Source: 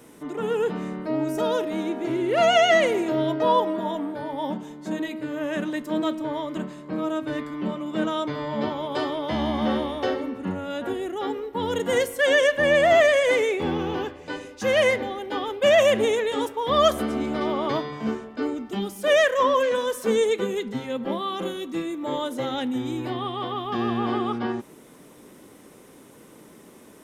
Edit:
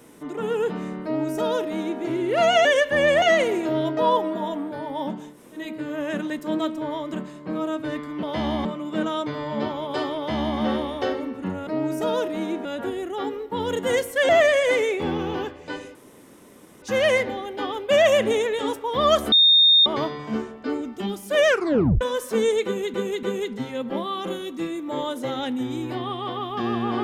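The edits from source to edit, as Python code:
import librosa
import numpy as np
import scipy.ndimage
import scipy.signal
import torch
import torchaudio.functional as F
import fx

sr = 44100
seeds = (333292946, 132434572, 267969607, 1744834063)

y = fx.edit(x, sr, fx.duplicate(start_s=1.04, length_s=0.98, to_s=10.68),
    fx.room_tone_fill(start_s=4.76, length_s=0.26, crossfade_s=0.16),
    fx.duplicate(start_s=9.18, length_s=0.42, to_s=7.66),
    fx.move(start_s=12.32, length_s=0.57, to_s=2.65),
    fx.insert_room_tone(at_s=14.55, length_s=0.87),
    fx.bleep(start_s=17.05, length_s=0.54, hz=3670.0, db=-11.5),
    fx.tape_stop(start_s=19.19, length_s=0.55),
    fx.repeat(start_s=20.38, length_s=0.29, count=3), tone=tone)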